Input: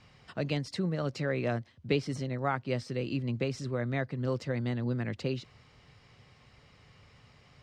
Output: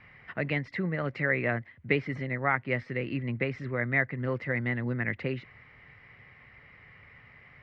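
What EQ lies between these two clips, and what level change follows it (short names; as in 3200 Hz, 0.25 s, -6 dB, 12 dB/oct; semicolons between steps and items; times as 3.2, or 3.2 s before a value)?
synth low-pass 2000 Hz, resonance Q 5.7; 0.0 dB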